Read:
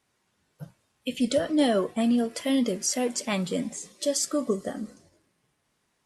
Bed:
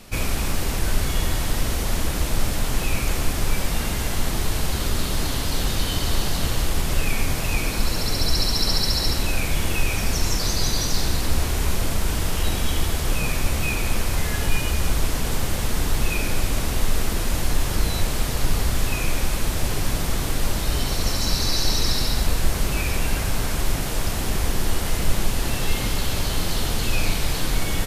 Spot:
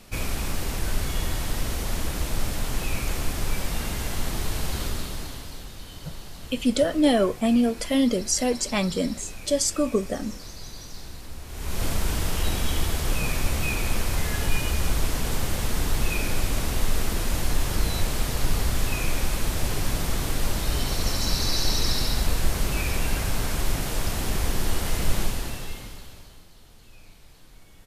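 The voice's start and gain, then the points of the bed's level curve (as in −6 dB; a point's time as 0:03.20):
5.45 s, +3.0 dB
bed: 0:04.82 −4.5 dB
0:05.71 −17.5 dB
0:11.44 −17.5 dB
0:11.84 −2.5 dB
0:25.22 −2.5 dB
0:26.50 −28.5 dB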